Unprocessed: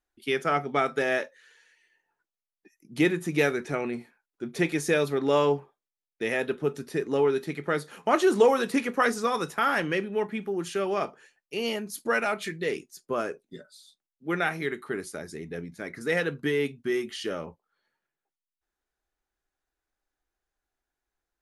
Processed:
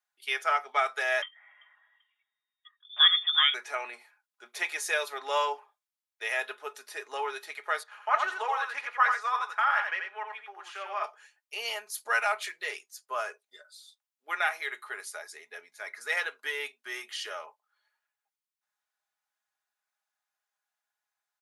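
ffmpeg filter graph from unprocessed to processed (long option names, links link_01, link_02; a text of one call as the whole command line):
ffmpeg -i in.wav -filter_complex "[0:a]asettb=1/sr,asplit=3[link_01][link_02][link_03];[link_01]atrim=end=1.224[link_04];[link_02]atrim=start=1.22:end=3.54,asetpts=PTS-STARTPTS,afade=type=in:duration=0.004:curve=qsin,afade=type=out:start_time=2.316:duration=0.004:curve=qsin,aecho=1:1:389|778:0.0631|0.0221,atrim=end_sample=102312,lowpass=frequency=3100:width_type=q:width=0.5098,lowpass=frequency=3100:width_type=q:width=0.6013,lowpass=frequency=3100:width_type=q:width=0.9,lowpass=frequency=3100:width_type=q:width=2.563,afreqshift=-3700[link_05];[link_03]atrim=start=3.536[link_06];[link_04][link_05]acrossfade=duration=0.004:curve1=hsin:curve2=qsin[link_07];[link_07][link_06]acrossfade=duration=0.004:curve1=qsin:curve2=hsin,asettb=1/sr,asplit=3[link_08][link_09][link_10];[link_08]atrim=end=7.834[link_11];[link_09]atrim=start=7.83:end=11.04,asetpts=PTS-STARTPTS,afade=type=in:duration=0.004:curve=qsin,afade=type=out:start_time=3.206:duration=0.004:curve=qsin,bandpass=frequency=1300:width_type=q:width=0.93,aecho=1:1:87:0.531,atrim=end_sample=141561[link_12];[link_10]atrim=start=11.036[link_13];[link_11][link_12]acrossfade=duration=0.004:curve1=hsin:curve2=qsin[link_14];[link_14][link_13]acrossfade=duration=0.004:curve1=qsin:curve2=hsin,highpass=frequency=720:width=0.5412,highpass=frequency=720:width=1.3066,aecho=1:1:4.8:0.45" out.wav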